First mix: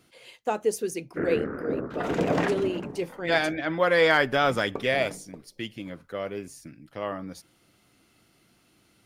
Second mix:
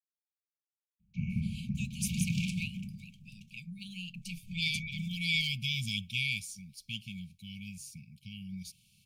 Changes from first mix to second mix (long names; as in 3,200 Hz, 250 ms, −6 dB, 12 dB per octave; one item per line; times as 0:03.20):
speech: entry +1.30 s
first sound +6.0 dB
master: add linear-phase brick-wall band-stop 220–2,200 Hz